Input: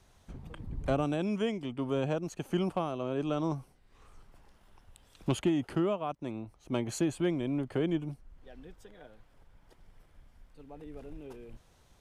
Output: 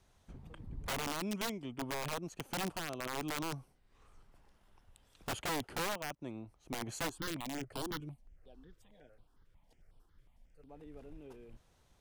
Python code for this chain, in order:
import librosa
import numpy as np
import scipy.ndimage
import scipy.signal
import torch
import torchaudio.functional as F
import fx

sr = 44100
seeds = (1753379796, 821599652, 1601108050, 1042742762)

y = (np.mod(10.0 ** (25.0 / 20.0) * x + 1.0, 2.0) - 1.0) / 10.0 ** (25.0 / 20.0)
y = fx.phaser_held(y, sr, hz=11.0, low_hz=220.0, high_hz=6500.0, at=(7.08, 10.68), fade=0.02)
y = y * librosa.db_to_amplitude(-6.0)